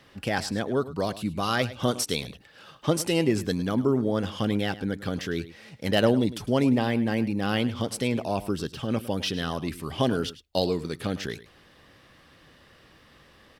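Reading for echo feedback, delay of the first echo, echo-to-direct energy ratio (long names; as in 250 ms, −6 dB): repeats not evenly spaced, 105 ms, −16.0 dB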